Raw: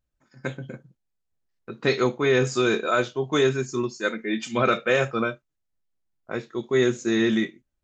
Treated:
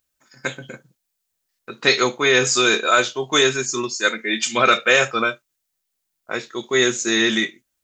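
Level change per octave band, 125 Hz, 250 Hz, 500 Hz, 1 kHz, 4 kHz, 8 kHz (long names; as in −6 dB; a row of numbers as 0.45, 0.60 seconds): −4.0 dB, 0.0 dB, +2.0 dB, +7.0 dB, +12.5 dB, can't be measured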